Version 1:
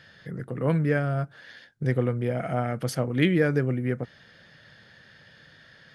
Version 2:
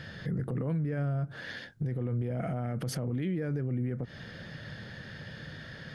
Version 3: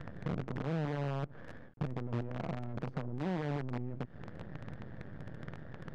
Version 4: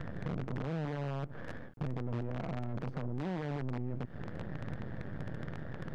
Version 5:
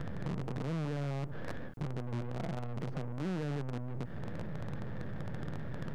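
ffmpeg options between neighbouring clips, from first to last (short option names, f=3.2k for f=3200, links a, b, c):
-af "lowshelf=f=460:g=10.5,acompressor=threshold=-24dB:ratio=6,alimiter=level_in=6dB:limit=-24dB:level=0:latency=1:release=70,volume=-6dB,volume=5dB"
-filter_complex "[0:a]acrossover=split=160|1700[a][b][c];[a]acompressor=threshold=-45dB:ratio=4[d];[b]acompressor=threshold=-44dB:ratio=4[e];[c]acompressor=threshold=-53dB:ratio=4[f];[d][e][f]amix=inputs=3:normalize=0,acrusher=bits=7:dc=4:mix=0:aa=0.000001,adynamicsmooth=sensitivity=3.5:basefreq=830,volume=4dB"
-af "alimiter=level_in=9.5dB:limit=-24dB:level=0:latency=1:release=16,volume=-9.5dB,volume=5.5dB"
-af "aeval=exprs='(tanh(100*val(0)+0.2)-tanh(0.2))/100':c=same,volume=9dB"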